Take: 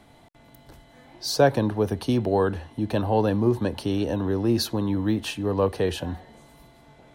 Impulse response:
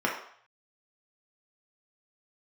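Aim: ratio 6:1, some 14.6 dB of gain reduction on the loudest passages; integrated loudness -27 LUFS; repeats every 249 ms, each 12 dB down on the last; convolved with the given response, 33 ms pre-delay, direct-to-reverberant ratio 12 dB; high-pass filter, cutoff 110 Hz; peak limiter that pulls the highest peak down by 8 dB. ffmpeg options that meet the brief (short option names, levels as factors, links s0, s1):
-filter_complex "[0:a]highpass=110,acompressor=threshold=0.0398:ratio=6,alimiter=level_in=1.19:limit=0.0631:level=0:latency=1,volume=0.841,aecho=1:1:249|498|747:0.251|0.0628|0.0157,asplit=2[s0][s1];[1:a]atrim=start_sample=2205,adelay=33[s2];[s1][s2]afir=irnorm=-1:irlink=0,volume=0.0631[s3];[s0][s3]amix=inputs=2:normalize=0,volume=2.37"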